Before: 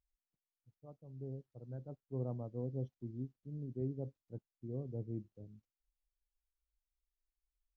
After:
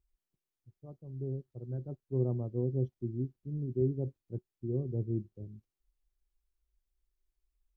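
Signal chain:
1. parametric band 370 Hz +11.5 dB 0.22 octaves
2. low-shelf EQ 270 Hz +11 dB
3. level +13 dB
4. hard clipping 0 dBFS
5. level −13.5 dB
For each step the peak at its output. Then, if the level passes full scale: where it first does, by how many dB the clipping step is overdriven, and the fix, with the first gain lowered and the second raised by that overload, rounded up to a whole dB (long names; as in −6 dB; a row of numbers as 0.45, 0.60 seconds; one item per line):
−24.5, −18.5, −5.5, −5.5, −19.0 dBFS
no step passes full scale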